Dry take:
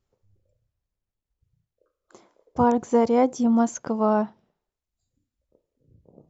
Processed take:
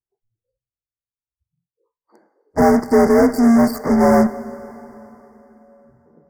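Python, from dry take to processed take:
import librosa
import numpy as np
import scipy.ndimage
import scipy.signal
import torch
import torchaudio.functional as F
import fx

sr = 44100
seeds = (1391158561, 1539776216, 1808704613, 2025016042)

p1 = fx.partial_stretch(x, sr, pct=86)
p2 = fx.fuzz(p1, sr, gain_db=37.0, gate_db=-40.0)
p3 = p1 + (p2 * librosa.db_to_amplitude(-5.0))
p4 = scipy.signal.sosfilt(scipy.signal.cheby1(5, 1.0, [2100.0, 4800.0], 'bandstop', fs=sr, output='sos'), p3)
p5 = fx.rev_plate(p4, sr, seeds[0], rt60_s=3.9, hf_ratio=0.75, predelay_ms=0, drr_db=14.5)
p6 = fx.noise_reduce_blind(p5, sr, reduce_db=21)
y = p6 * librosa.db_to_amplitude(2.5)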